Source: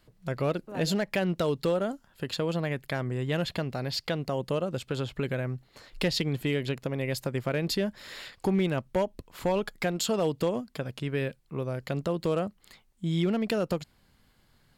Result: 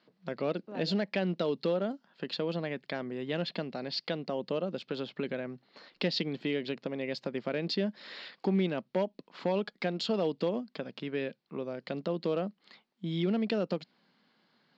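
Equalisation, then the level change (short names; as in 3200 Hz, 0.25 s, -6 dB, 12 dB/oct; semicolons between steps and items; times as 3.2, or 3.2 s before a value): elliptic band-pass 190–4700 Hz, stop band 40 dB; dynamic EQ 1200 Hz, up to -5 dB, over -46 dBFS, Q 0.87; -1.0 dB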